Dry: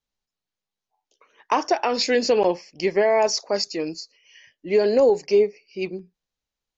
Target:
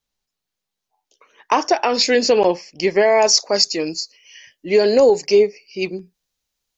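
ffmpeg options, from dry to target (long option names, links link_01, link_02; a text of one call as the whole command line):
ffmpeg -i in.wav -af "asetnsamples=nb_out_samples=441:pad=0,asendcmd='2.96 highshelf g 10',highshelf=frequency=3700:gain=4,volume=4dB" out.wav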